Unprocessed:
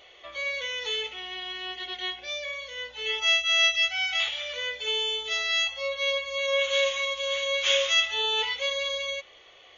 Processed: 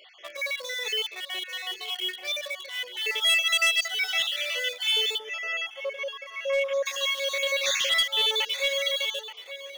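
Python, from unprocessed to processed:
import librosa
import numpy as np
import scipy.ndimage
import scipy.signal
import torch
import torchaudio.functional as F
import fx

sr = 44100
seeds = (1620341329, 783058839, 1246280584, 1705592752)

p1 = fx.spec_dropout(x, sr, seeds[0], share_pct=41)
p2 = fx.quant_dither(p1, sr, seeds[1], bits=6, dither='none')
p3 = p1 + (p2 * librosa.db_to_amplitude(-8.5))
p4 = scipy.signal.sosfilt(scipy.signal.butter(2, 430.0, 'highpass', fs=sr, output='sos'), p3)
p5 = p4 + fx.echo_single(p4, sr, ms=877, db=-14.5, dry=0)
p6 = fx.dynamic_eq(p5, sr, hz=950.0, q=1.2, threshold_db=-45.0, ratio=4.0, max_db=-6)
p7 = fx.moving_average(p6, sr, points=11, at=(5.17, 6.85), fade=0.02)
p8 = np.clip(p7, -10.0 ** (-20.5 / 20.0), 10.0 ** (-20.5 / 20.0))
y = p8 * librosa.db_to_amplitude(2.5)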